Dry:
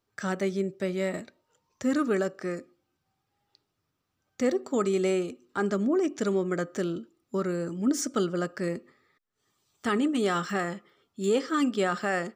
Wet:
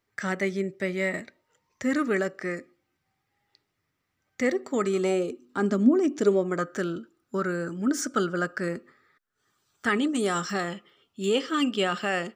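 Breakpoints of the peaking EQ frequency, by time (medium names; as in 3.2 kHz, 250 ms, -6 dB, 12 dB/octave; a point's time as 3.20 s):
peaking EQ +11.5 dB 0.42 oct
4.83 s 2 kHz
5.45 s 250 Hz
6.12 s 250 Hz
6.68 s 1.5 kHz
9.86 s 1.5 kHz
10.24 s 11 kHz
10.72 s 2.9 kHz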